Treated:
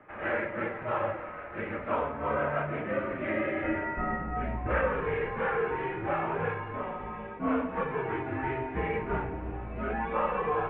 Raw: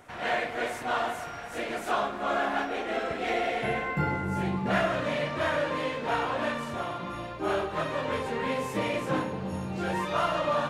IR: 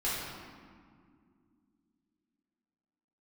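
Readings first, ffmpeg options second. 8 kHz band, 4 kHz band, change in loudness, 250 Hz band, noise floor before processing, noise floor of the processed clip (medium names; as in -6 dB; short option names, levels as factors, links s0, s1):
under -35 dB, -15.5 dB, -2.0 dB, -1.5 dB, -39 dBFS, -40 dBFS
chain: -af "bandreject=f=52.05:t=h:w=4,bandreject=f=104.1:t=h:w=4,bandreject=f=156.15:t=h:w=4,bandreject=f=208.2:t=h:w=4,bandreject=f=260.25:t=h:w=4,bandreject=f=312.3:t=h:w=4,bandreject=f=364.35:t=h:w=4,bandreject=f=416.4:t=h:w=4,bandreject=f=468.45:t=h:w=4,bandreject=f=520.5:t=h:w=4,bandreject=f=572.55:t=h:w=4,bandreject=f=624.6:t=h:w=4,bandreject=f=676.65:t=h:w=4,bandreject=f=728.7:t=h:w=4,bandreject=f=780.75:t=h:w=4,bandreject=f=832.8:t=h:w=4,bandreject=f=884.85:t=h:w=4,bandreject=f=936.9:t=h:w=4,bandreject=f=988.95:t=h:w=4,flanger=delay=2.2:depth=3.1:regen=70:speed=0.28:shape=sinusoidal,highpass=f=170:t=q:w=0.5412,highpass=f=170:t=q:w=1.307,lowpass=f=2500:t=q:w=0.5176,lowpass=f=2500:t=q:w=0.7071,lowpass=f=2500:t=q:w=1.932,afreqshift=-130,volume=1.5"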